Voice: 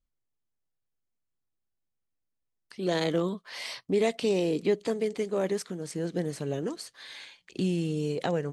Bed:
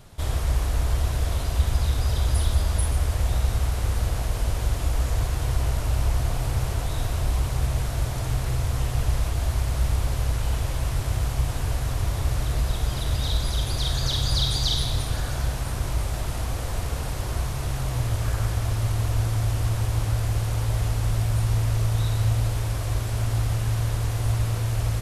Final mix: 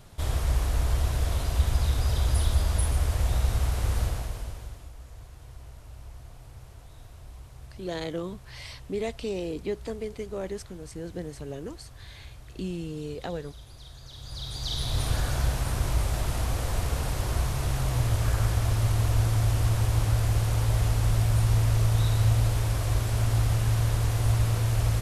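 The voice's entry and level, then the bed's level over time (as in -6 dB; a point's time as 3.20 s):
5.00 s, -5.5 dB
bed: 4.02 s -2 dB
4.94 s -21.5 dB
14.08 s -21.5 dB
15.06 s 0 dB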